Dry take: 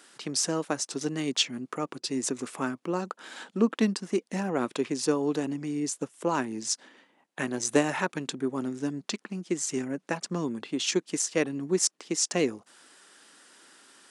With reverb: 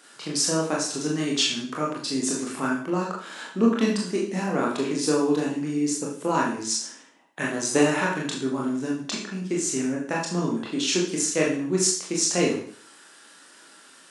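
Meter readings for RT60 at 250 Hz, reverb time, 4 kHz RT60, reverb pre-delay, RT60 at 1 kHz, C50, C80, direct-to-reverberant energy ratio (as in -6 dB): 0.50 s, 0.50 s, 0.50 s, 23 ms, 0.55 s, 4.5 dB, 9.0 dB, -3.5 dB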